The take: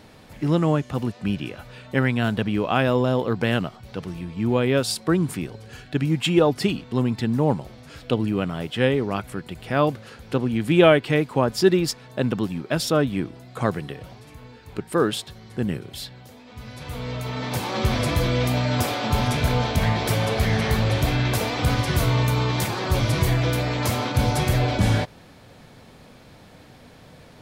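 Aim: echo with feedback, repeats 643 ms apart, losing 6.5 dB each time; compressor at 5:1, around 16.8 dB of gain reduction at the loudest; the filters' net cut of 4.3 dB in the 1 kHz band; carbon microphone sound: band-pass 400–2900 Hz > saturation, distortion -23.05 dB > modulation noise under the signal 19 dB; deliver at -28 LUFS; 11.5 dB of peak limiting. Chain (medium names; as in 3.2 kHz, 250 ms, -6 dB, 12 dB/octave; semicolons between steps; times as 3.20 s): peaking EQ 1 kHz -5.5 dB; compression 5:1, threshold -31 dBFS; peak limiter -26.5 dBFS; band-pass 400–2900 Hz; feedback delay 643 ms, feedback 47%, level -6.5 dB; saturation -30 dBFS; modulation noise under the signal 19 dB; trim +14.5 dB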